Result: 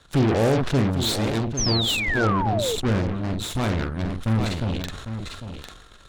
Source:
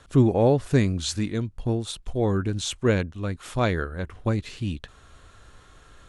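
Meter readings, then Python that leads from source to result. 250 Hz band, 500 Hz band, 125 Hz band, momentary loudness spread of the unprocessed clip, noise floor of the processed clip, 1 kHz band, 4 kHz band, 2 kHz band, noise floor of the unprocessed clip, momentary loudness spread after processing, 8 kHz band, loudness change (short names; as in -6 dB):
+1.0 dB, 0.0 dB, +1.5 dB, 12 LU, -48 dBFS, +5.0 dB, +8.5 dB, +6.0 dB, -54 dBFS, 13 LU, +5.0 dB, +2.0 dB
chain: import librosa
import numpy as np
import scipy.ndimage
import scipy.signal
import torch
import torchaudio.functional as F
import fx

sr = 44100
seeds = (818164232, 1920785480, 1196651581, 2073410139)

y = fx.spec_box(x, sr, start_s=2.27, length_s=2.46, low_hz=280.0, high_hz=8900.0, gain_db=-7)
y = fx.env_lowpass_down(y, sr, base_hz=1400.0, full_db=-18.0)
y = fx.peak_eq(y, sr, hz=3800.0, db=8.5, octaves=0.32)
y = fx.leveller(y, sr, passes=1)
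y = fx.doubler(y, sr, ms=45.0, db=-7)
y = 10.0 ** (-15.0 / 20.0) * np.tanh(y / 10.0 ** (-15.0 / 20.0))
y = fx.cheby_harmonics(y, sr, harmonics=(3, 4, 8), levels_db=(-21, -19, -16), full_scale_db=-15.0)
y = y + 10.0 ** (-10.0 / 20.0) * np.pad(y, (int(801 * sr / 1000.0), 0))[:len(y)]
y = fx.spec_paint(y, sr, seeds[0], shape='fall', start_s=1.57, length_s=1.19, low_hz=420.0, high_hz=6500.0, level_db=-26.0)
y = fx.sustainer(y, sr, db_per_s=44.0)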